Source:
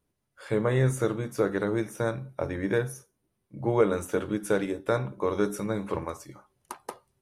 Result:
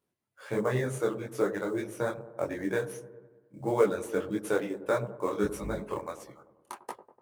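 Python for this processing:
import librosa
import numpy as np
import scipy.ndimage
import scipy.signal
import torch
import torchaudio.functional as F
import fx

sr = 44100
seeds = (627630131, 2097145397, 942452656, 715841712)

p1 = fx.octave_divider(x, sr, octaves=2, level_db=3.0, at=(5.43, 5.94))
p2 = fx.dereverb_blind(p1, sr, rt60_s=0.87)
p3 = fx.sample_hold(p2, sr, seeds[0], rate_hz=8300.0, jitter_pct=20)
p4 = p2 + (p3 * 10.0 ** (-8.5 / 20.0))
p5 = fx.highpass(p4, sr, hz=200.0, slope=6)
p6 = p5 + fx.echo_wet_lowpass(p5, sr, ms=98, feedback_pct=61, hz=860.0, wet_db=-12, dry=0)
y = fx.detune_double(p6, sr, cents=55)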